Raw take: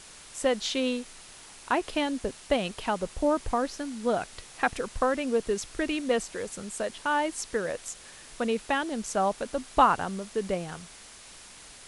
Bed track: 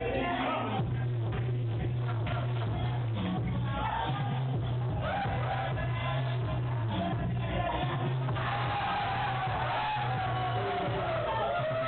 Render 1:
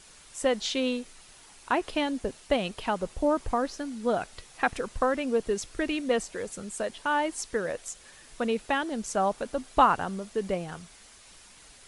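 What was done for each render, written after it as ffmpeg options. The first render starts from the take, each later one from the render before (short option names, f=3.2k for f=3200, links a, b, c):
-af "afftdn=nr=6:nf=-49"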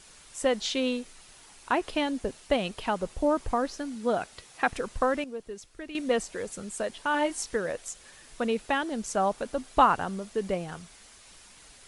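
-filter_complex "[0:a]asettb=1/sr,asplit=3[a][b][c];[a]atrim=end=3.954[d];[b]atrim=start=3.95:end=4.69,asetpts=PTS-STARTPTS,afade=t=in:d=0.004:c=qsin,afade=t=out:st=0.736:d=0.004:c=qsin,highpass=f=87:p=1[e];[c]atrim=start=4.686[f];[d][e]acrossfade=d=0.004:c1=hsin:c2=qsin[g];[g][f]acrossfade=d=0.004:c1=qsin:c2=hsin,asettb=1/sr,asplit=3[h][i][j];[h]atrim=end=7.124[k];[i]atrim=start=7.12:end=7.56,asetpts=PTS-STARTPTS,afade=t=in:d=0.004:c=qsin,afade=t=out:st=0.436:d=0.004:c=qsin,asplit=2[l][m];[m]adelay=20,volume=-4dB[n];[l][n]amix=inputs=2:normalize=0,atrim=end_sample=19404[o];[j]atrim=start=7.556[p];[k][o]acrossfade=d=0.004:c1=hsin:c2=qsin[q];[q][p]acrossfade=d=0.004:c1=qsin:c2=hsin,asplit=3[r][s][t];[r]atrim=end=5.242[u];[s]atrim=start=5.238:end=5.952,asetpts=PTS-STARTPTS,volume=-11.5dB[v];[t]atrim=start=5.948[w];[u][v]acrossfade=d=0.004:c1=hsin:c2=hsin[x];[x][w]acrossfade=d=0.004:c1=hsin:c2=hsin"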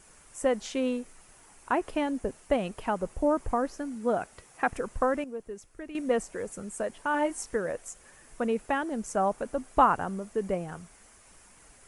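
-af "equalizer=f=3.9k:t=o:w=1.1:g=-13.5"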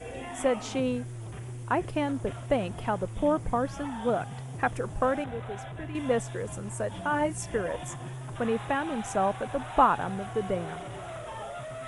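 -filter_complex "[1:a]volume=-8dB[a];[0:a][a]amix=inputs=2:normalize=0"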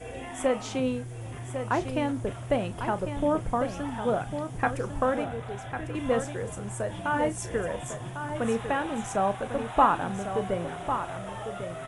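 -filter_complex "[0:a]asplit=2[a][b];[b]adelay=35,volume=-13dB[c];[a][c]amix=inputs=2:normalize=0,asplit=2[d][e];[e]aecho=0:1:1100:0.376[f];[d][f]amix=inputs=2:normalize=0"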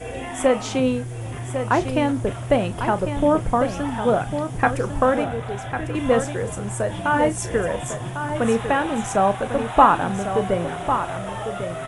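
-af "volume=7.5dB,alimiter=limit=-2dB:level=0:latency=1"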